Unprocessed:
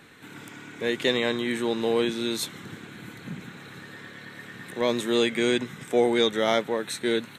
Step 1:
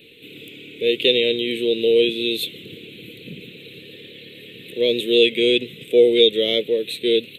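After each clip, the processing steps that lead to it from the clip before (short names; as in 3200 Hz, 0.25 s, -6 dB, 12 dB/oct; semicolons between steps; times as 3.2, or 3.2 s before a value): EQ curve 240 Hz 0 dB, 480 Hz +11 dB, 860 Hz -25 dB, 1600 Hz -19 dB, 2600 Hz +14 dB, 3700 Hz +11 dB, 5700 Hz -14 dB, 13000 Hz +7 dB; gain -1 dB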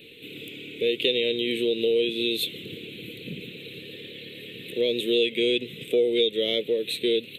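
compressor 2.5:1, threshold -23 dBFS, peak gain reduction 9.5 dB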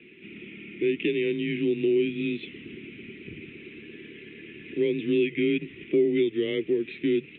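mistuned SSB -91 Hz 250–2600 Hz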